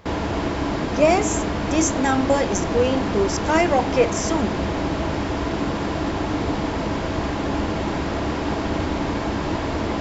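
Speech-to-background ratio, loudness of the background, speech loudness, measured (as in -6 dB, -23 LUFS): 2.5 dB, -24.5 LUFS, -22.0 LUFS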